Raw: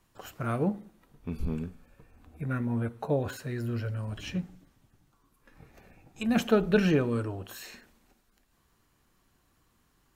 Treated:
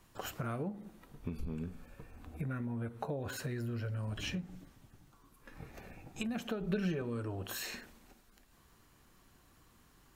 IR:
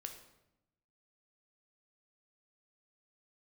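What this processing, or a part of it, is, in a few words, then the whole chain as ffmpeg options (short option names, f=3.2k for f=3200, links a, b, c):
serial compression, peaks first: -filter_complex "[0:a]acompressor=threshold=-36dB:ratio=4,acompressor=threshold=-41dB:ratio=2.5,asettb=1/sr,asplit=3[a][b][c];[a]atrim=end=6.604[d];[b]atrim=start=6.6:end=7.02,asetpts=PTS-STARTPTS,afade=t=in:d=0.004:c=qsin,afade=t=out:st=0.416:d=0.004:c=qsin,aecho=1:1:5.2:0.75,atrim=end_sample=18522[e];[c]atrim=start=7.016[f];[d][e]acrossfade=d=0.004:c1=hsin:c2=qsin[g];[g][f]acrossfade=d=0.004:c1=qsin:c2=hsin,volume=4.5dB"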